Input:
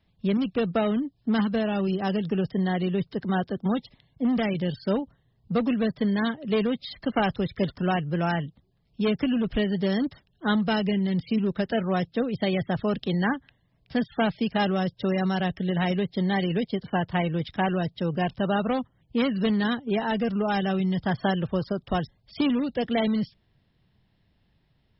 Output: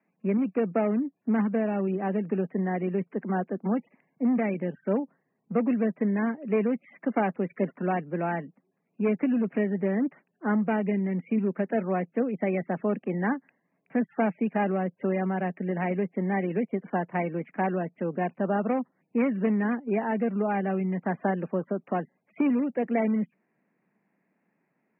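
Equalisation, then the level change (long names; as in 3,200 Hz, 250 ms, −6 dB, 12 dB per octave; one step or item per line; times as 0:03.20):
Butterworth high-pass 190 Hz 36 dB per octave
Butterworth low-pass 2,500 Hz 96 dB per octave
dynamic equaliser 1,400 Hz, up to −5 dB, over −44 dBFS, Q 1.4
0.0 dB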